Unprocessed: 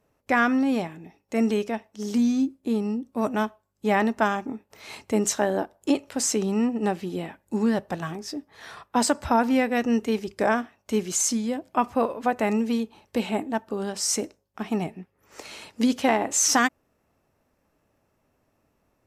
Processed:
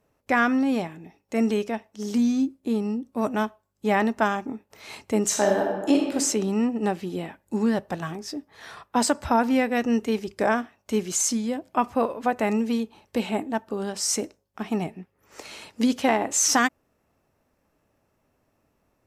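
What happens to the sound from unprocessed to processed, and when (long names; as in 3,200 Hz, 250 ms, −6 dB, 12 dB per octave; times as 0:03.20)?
0:05.26–0:06.13: thrown reverb, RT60 1.2 s, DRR 0 dB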